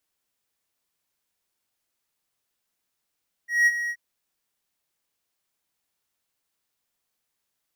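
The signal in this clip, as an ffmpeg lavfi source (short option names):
-f lavfi -i "aevalsrc='0.251*(1-4*abs(mod(1900*t+0.25,1)-0.5))':d=0.478:s=44100,afade=t=in:d=0.185,afade=t=out:st=0.185:d=0.041:silence=0.266,afade=t=out:st=0.42:d=0.058"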